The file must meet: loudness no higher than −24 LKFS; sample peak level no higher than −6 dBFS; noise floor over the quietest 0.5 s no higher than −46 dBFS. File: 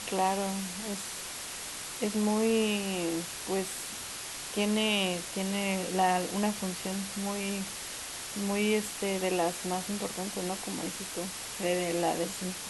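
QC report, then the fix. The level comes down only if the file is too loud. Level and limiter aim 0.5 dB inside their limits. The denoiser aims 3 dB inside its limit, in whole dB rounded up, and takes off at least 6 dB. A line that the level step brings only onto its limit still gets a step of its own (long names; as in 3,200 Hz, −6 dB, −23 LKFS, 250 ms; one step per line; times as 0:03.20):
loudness −31.5 LKFS: in spec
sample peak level −14.5 dBFS: in spec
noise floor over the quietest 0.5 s −40 dBFS: out of spec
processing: broadband denoise 9 dB, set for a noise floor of −40 dBFS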